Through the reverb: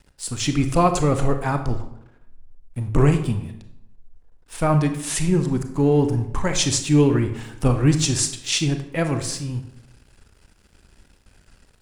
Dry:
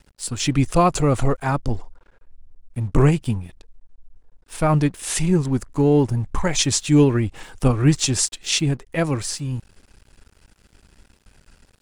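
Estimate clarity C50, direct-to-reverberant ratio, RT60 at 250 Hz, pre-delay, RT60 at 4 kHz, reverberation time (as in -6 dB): 9.5 dB, 7.0 dB, 0.90 s, 27 ms, 0.55 s, 0.80 s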